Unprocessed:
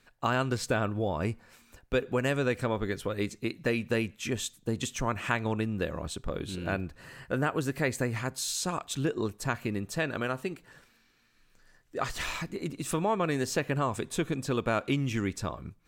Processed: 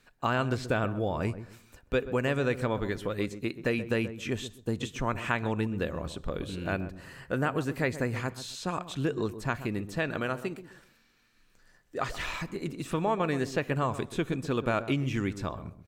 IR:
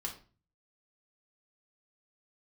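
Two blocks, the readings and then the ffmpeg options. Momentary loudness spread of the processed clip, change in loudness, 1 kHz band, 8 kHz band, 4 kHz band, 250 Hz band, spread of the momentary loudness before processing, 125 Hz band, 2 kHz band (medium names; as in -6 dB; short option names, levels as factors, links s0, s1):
7 LU, 0.0 dB, 0.0 dB, -9.0 dB, -2.5 dB, +0.5 dB, 7 LU, +0.5 dB, 0.0 dB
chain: -filter_complex "[0:a]acrossover=split=4000[s0][s1];[s1]acompressor=threshold=0.00447:ratio=4:attack=1:release=60[s2];[s0][s2]amix=inputs=2:normalize=0,asplit=2[s3][s4];[s4]adelay=130,lowpass=f=820:p=1,volume=0.282,asplit=2[s5][s6];[s6]adelay=130,lowpass=f=820:p=1,volume=0.28,asplit=2[s7][s8];[s8]adelay=130,lowpass=f=820:p=1,volume=0.28[s9];[s3][s5][s7][s9]amix=inputs=4:normalize=0"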